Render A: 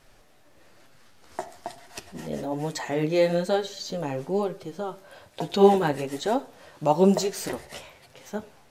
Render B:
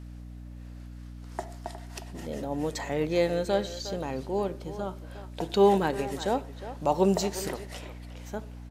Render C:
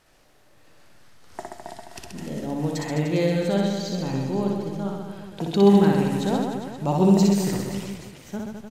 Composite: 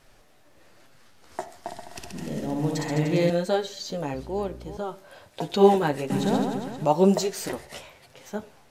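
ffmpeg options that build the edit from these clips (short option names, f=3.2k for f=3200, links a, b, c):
-filter_complex "[2:a]asplit=2[a][b];[0:a]asplit=4[c][d][e][f];[c]atrim=end=1.682[g];[a]atrim=start=1.678:end=3.302[h];[d]atrim=start=3.298:end=4.142[i];[1:a]atrim=start=4.138:end=4.772[j];[e]atrim=start=4.768:end=6.102[k];[b]atrim=start=6.098:end=6.852[l];[f]atrim=start=6.848[m];[g][h]acrossfade=d=0.004:c1=hsin:c2=hsin[n];[n][i]acrossfade=d=0.004:c1=hsin:c2=hsin[o];[o][j]acrossfade=d=0.004:c1=hsin:c2=hsin[p];[p][k]acrossfade=d=0.004:c1=hsin:c2=hsin[q];[q][l]acrossfade=d=0.004:c1=hsin:c2=hsin[r];[r][m]acrossfade=d=0.004:c1=hsin:c2=hsin"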